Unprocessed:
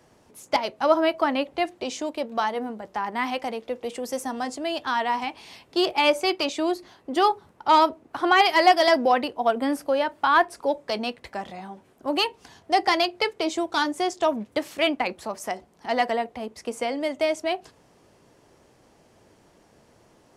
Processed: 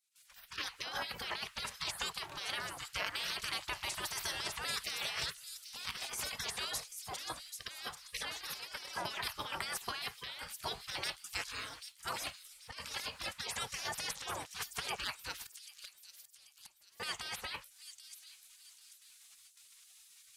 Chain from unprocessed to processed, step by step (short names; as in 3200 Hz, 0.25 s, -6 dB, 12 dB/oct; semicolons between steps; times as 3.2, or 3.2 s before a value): gate with hold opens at -48 dBFS; spectral gate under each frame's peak -25 dB weak; bell 290 Hz -6.5 dB 1.4 oct; negative-ratio compressor -48 dBFS, ratio -1; 15.38–17 flipped gate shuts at -44 dBFS, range -35 dB; on a send: thin delay 0.787 s, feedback 39%, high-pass 5400 Hz, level -5 dB; on the sum: gain +7 dB